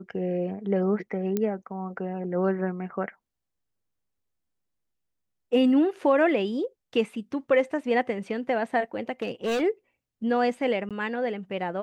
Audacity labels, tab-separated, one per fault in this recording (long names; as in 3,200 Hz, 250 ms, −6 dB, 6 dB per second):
1.370000	1.370000	click −14 dBFS
9.220000	9.620000	clipping −23.5 dBFS
10.890000	10.910000	drop-out 17 ms